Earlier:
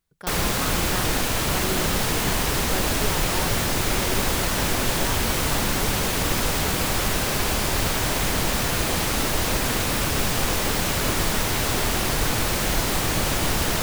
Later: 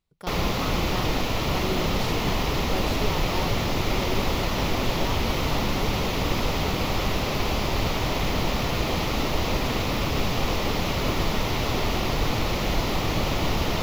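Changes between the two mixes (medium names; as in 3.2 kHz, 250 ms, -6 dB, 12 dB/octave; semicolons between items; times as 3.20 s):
background: add boxcar filter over 5 samples; master: add peaking EQ 1.6 kHz -10.5 dB 0.33 oct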